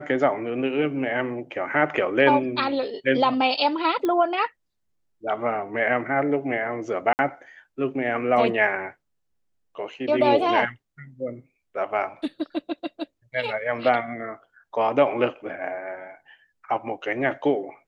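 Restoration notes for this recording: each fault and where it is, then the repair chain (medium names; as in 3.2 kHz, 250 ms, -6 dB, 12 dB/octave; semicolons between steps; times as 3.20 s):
4.05 s: pop -14 dBFS
7.13–7.19 s: dropout 59 ms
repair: de-click; interpolate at 7.13 s, 59 ms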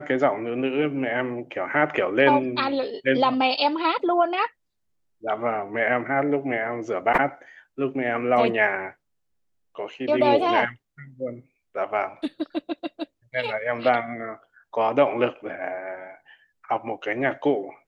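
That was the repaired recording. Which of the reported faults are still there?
nothing left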